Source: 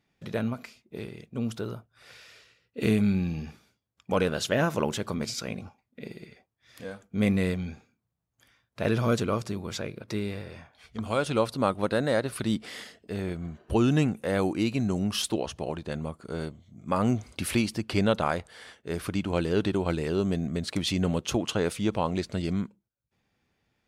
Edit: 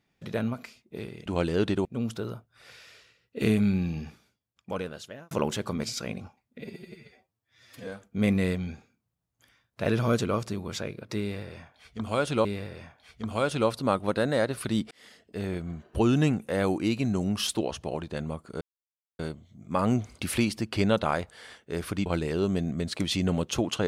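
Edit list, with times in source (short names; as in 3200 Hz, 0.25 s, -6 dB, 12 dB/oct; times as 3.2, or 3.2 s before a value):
3.4–4.72 fade out linear
6.02–6.86 stretch 1.5×
10.2–11.44 loop, 2 plays
12.66–13.15 fade in
16.36 insert silence 0.58 s
19.23–19.82 move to 1.26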